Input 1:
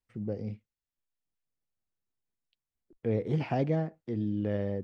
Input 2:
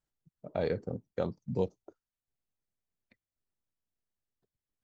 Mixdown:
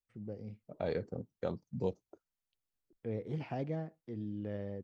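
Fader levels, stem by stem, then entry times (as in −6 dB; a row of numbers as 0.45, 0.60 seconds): −9.0, −4.0 decibels; 0.00, 0.25 seconds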